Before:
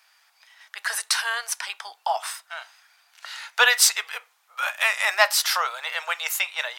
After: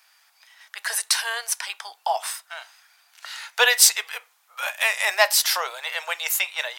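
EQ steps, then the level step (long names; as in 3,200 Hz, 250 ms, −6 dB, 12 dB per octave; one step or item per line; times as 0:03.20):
dynamic equaliser 370 Hz, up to +6 dB, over −42 dBFS, Q 1.1
dynamic equaliser 1,300 Hz, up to −7 dB, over −40 dBFS, Q 3.4
high-shelf EQ 7,400 Hz +6 dB
0.0 dB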